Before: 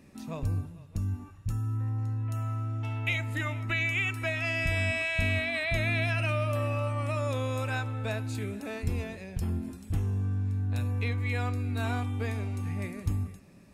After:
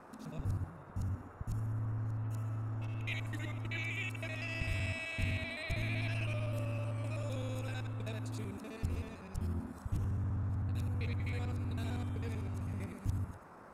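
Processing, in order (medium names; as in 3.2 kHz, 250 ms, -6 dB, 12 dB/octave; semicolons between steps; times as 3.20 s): time reversed locally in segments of 64 ms; peaking EQ 1.1 kHz -13 dB 1.7 oct; band noise 220–1400 Hz -50 dBFS; loudspeaker Doppler distortion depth 0.18 ms; trim -5.5 dB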